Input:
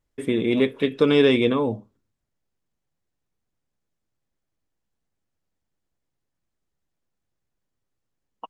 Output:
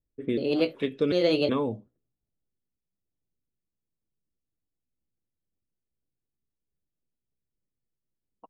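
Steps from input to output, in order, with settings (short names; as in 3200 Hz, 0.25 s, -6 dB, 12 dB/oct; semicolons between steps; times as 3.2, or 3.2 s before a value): trilling pitch shifter +3.5 st, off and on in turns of 0.372 s; rotary speaker horn 1.2 Hz, later 6.3 Hz, at 4.47; low-pass opened by the level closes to 480 Hz, open at -22.5 dBFS; gain -3.5 dB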